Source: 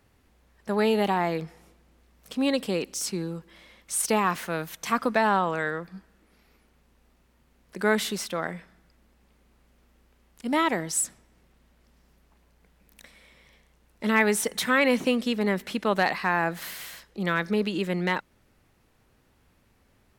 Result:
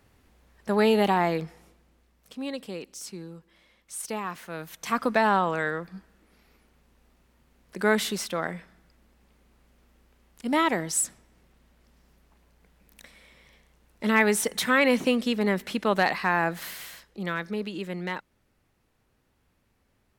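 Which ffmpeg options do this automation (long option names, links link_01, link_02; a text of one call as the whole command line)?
ffmpeg -i in.wav -af "volume=11.5dB,afade=type=out:start_time=1.23:duration=1.17:silence=0.281838,afade=type=in:start_time=4.44:duration=0.69:silence=0.334965,afade=type=out:start_time=16.44:duration=1.07:silence=0.473151" out.wav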